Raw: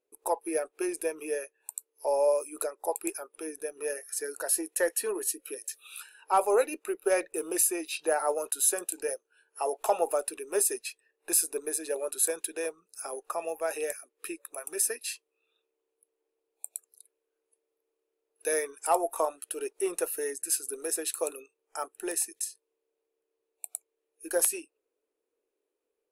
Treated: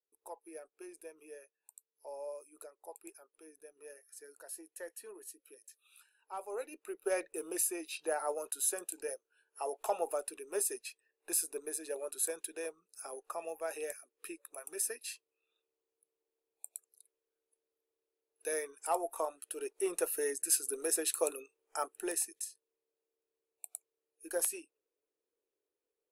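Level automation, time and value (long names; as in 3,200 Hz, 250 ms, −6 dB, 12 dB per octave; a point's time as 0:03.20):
0:06.42 −18.5 dB
0:07.07 −7.5 dB
0:19.31 −7.5 dB
0:20.33 −1 dB
0:21.89 −1 dB
0:22.45 −7.5 dB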